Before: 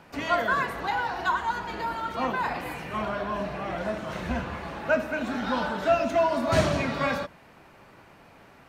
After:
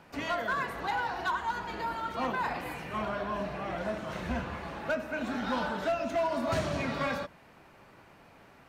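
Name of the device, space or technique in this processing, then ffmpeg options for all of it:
limiter into clipper: -af "alimiter=limit=-16dB:level=0:latency=1:release=318,asoftclip=type=hard:threshold=-20.5dB,volume=-3.5dB"

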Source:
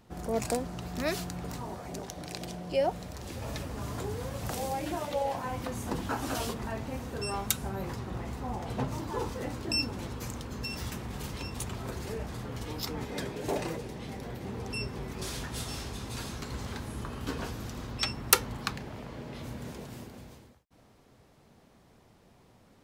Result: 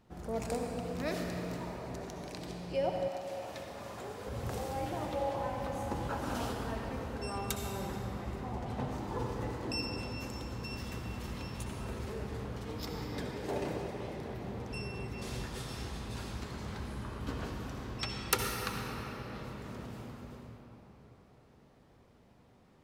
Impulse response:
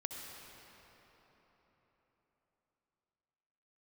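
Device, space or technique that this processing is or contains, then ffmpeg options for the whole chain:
swimming-pool hall: -filter_complex "[1:a]atrim=start_sample=2205[a];[0:a][a]afir=irnorm=-1:irlink=0,highshelf=f=4.9k:g=-6,asettb=1/sr,asplit=3[b][c][d];[b]atrim=end=3.084[e];[c]atrim=start=3.08:end=4.27,asetpts=PTS-STARTPTS,afade=t=in:d=0.004:c=qsin,afade=t=out:st=1.186:d=0.004:c=qsin,highpass=f=420:p=1[f];[d]atrim=start=4.266[g];[e][f]acrossfade=d=0.004:c1=hsin:c2=qsin[h];[h][g]acrossfade=d=0.004:c1=qsin:c2=hsin,volume=-2.5dB"

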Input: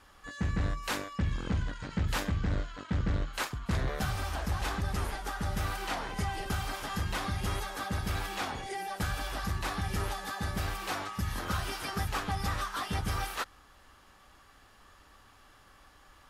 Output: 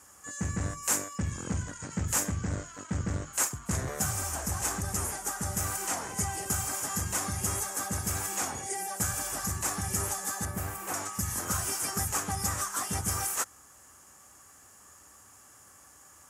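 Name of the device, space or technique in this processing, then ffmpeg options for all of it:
budget condenser microphone: -filter_complex "[0:a]highpass=f=71:w=0.5412,highpass=f=71:w=1.3066,highshelf=f=5.3k:t=q:w=3:g=11.5,asettb=1/sr,asplit=3[a][b][c];[a]atrim=end=10.454[d];[b]atrim=start=10.45:end=10.94,asetpts=PTS-STARTPTS,afade=t=in:d=0.004:c=qsin,afade=t=out:st=0.486:d=0.004:c=qsin,equalizer=f=6.2k:w=0.6:g=-11[e];[c]atrim=start=10.936[f];[d][e]acrossfade=d=0.004:c1=hsin:c2=qsin[g];[g][f]acrossfade=d=0.004:c1=qsin:c2=hsin"

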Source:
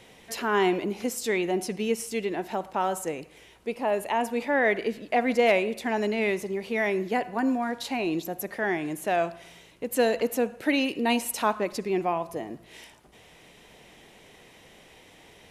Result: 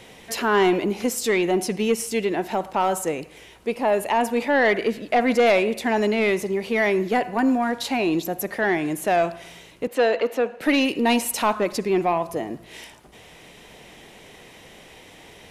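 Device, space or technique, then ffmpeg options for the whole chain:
saturation between pre-emphasis and de-emphasis: -filter_complex "[0:a]highshelf=f=6.6k:g=8.5,asoftclip=type=tanh:threshold=-17dB,highshelf=f=6.6k:g=-8.5,asettb=1/sr,asplit=3[a][b][c];[a]atrim=end=9.874[d];[b]atrim=start=9.87:end=10.61,asetpts=PTS-STARTPTS,afade=t=in:d=0.004:c=qsin,afade=t=out:st=0.736:d=0.004:c=qsin,acrossover=split=290 4400:gain=0.158 1 0.141[e][f][g];[e][f][g]amix=inputs=3:normalize=0[h];[c]atrim=start=10.606[i];[d][h]acrossfade=d=0.004:c1=hsin:c2=qsin[j];[j][i]acrossfade=d=0.004:c1=qsin:c2=hsin,volume=6.5dB"

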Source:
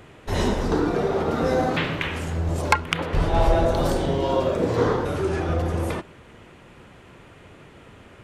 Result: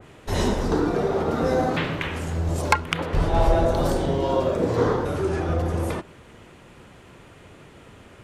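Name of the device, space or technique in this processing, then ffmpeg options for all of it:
exciter from parts: -filter_complex "[0:a]asplit=2[a][b];[b]highpass=3.4k,asoftclip=type=tanh:threshold=-24dB,volume=-5dB[c];[a][c]amix=inputs=2:normalize=0,adynamicequalizer=threshold=0.0126:dfrequency=2400:dqfactor=0.7:tfrequency=2400:tqfactor=0.7:attack=5:release=100:ratio=0.375:range=2:mode=cutabove:tftype=highshelf"

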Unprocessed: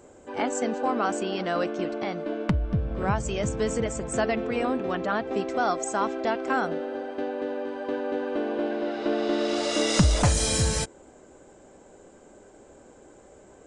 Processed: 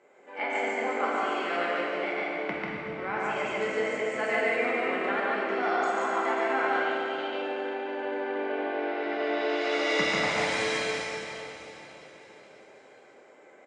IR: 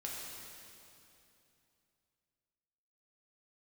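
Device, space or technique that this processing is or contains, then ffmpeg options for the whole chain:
station announcement: -filter_complex "[0:a]asettb=1/sr,asplit=3[a][b][c];[a]atrim=end=6.684[d];[b]atrim=start=6.68:end=7.28,asetpts=PTS-STARTPTS,afade=t=in:d=0.004:c=qsin,afade=t=out:st=0.596:d=0.004:c=qsin,highshelf=f=2.3k:t=q:w=3:g=8.5[e];[c]atrim=start=7.276[f];[d][e]acrossfade=d=0.004:c1=hsin:c2=qsin[g];[g][f]acrossfade=d=0.004:c1=qsin:c2=hsin,highpass=400,lowpass=3.6k,equalizer=f=2.1k:t=o:w=0.51:g=11.5,aecho=1:1:142.9|186.6:0.891|0.316,aecho=1:1:539|1078|1617|2156:0.133|0.0693|0.0361|0.0188[h];[1:a]atrim=start_sample=2205[i];[h][i]afir=irnorm=-1:irlink=0,volume=-3.5dB"

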